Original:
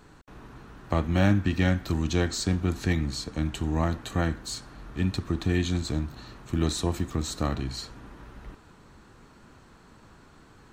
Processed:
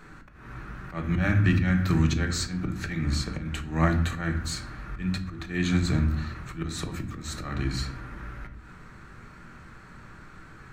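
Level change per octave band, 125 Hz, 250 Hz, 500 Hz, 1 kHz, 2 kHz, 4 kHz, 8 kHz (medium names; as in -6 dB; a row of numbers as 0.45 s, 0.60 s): +1.5 dB, 0.0 dB, -4.5 dB, -0.5 dB, +3.0 dB, -1.0 dB, -1.0 dB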